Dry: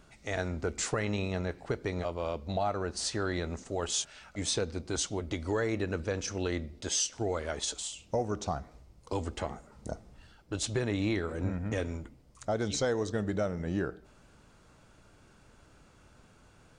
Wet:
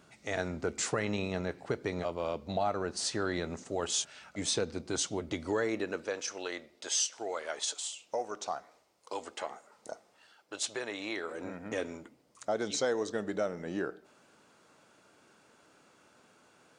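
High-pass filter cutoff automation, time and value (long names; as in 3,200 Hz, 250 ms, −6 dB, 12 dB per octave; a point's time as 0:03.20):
0:05.38 130 Hz
0:06.29 550 Hz
0:11.07 550 Hz
0:11.76 270 Hz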